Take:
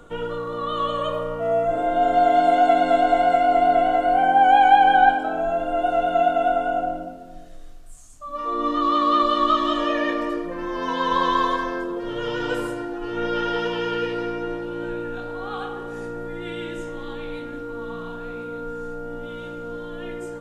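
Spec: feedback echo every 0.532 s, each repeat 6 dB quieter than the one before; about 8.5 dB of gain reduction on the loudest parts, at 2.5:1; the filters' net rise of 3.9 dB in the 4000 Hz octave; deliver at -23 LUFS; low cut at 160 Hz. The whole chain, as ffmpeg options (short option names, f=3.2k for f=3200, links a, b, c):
-af "highpass=160,equalizer=f=4k:t=o:g=5.5,acompressor=threshold=-23dB:ratio=2.5,aecho=1:1:532|1064|1596|2128|2660|3192:0.501|0.251|0.125|0.0626|0.0313|0.0157,volume=2.5dB"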